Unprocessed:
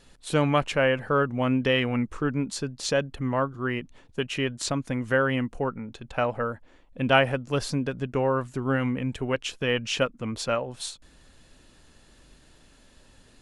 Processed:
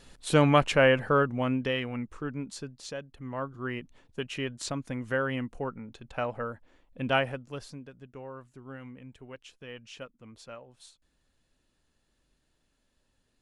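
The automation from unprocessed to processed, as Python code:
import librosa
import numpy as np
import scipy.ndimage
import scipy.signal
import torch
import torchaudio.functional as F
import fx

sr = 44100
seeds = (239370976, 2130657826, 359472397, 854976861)

y = fx.gain(x, sr, db=fx.line((0.98, 1.5), (1.88, -8.5), (2.63, -8.5), (3.06, -15.5), (3.55, -6.0), (7.17, -6.0), (7.88, -18.5)))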